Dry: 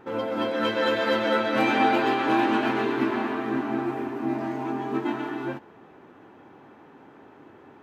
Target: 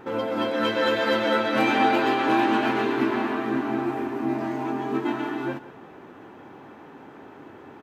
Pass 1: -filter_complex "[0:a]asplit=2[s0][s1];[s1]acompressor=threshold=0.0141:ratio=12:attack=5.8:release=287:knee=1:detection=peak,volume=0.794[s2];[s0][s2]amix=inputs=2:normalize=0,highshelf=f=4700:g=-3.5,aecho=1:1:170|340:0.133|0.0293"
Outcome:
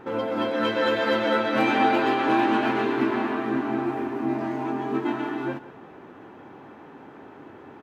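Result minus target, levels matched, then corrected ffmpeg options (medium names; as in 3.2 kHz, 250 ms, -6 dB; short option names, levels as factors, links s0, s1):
8 kHz band -4.0 dB
-filter_complex "[0:a]asplit=2[s0][s1];[s1]acompressor=threshold=0.0141:ratio=12:attack=5.8:release=287:knee=1:detection=peak,volume=0.794[s2];[s0][s2]amix=inputs=2:normalize=0,highshelf=f=4700:g=2.5,aecho=1:1:170|340:0.133|0.0293"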